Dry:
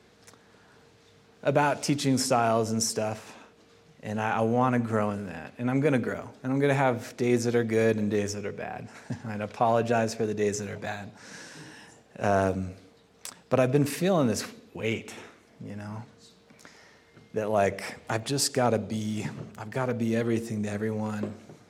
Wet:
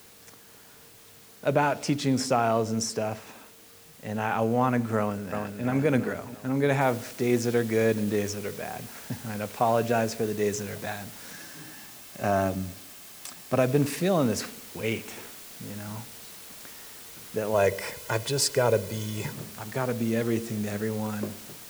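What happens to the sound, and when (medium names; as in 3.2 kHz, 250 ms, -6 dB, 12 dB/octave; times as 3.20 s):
1.50–4.42 s: treble shelf 9.8 kHz -12 dB
4.98–5.66 s: echo throw 340 ms, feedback 50%, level -4.5 dB
6.81 s: noise floor step -53 dB -45 dB
11.33–13.58 s: comb of notches 480 Hz
17.54–19.33 s: comb 2 ms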